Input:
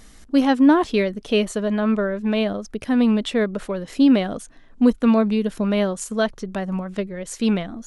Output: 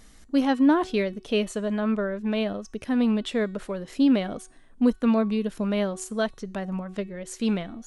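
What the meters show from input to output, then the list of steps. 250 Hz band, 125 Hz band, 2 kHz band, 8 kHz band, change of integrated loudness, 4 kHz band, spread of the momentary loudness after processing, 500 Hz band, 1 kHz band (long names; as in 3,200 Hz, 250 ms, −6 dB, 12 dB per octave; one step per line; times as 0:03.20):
−5.0 dB, can't be measured, −5.0 dB, −5.0 dB, −5.0 dB, −5.0 dB, 13 LU, −5.0 dB, −5.0 dB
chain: hum removal 373 Hz, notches 28
level −5 dB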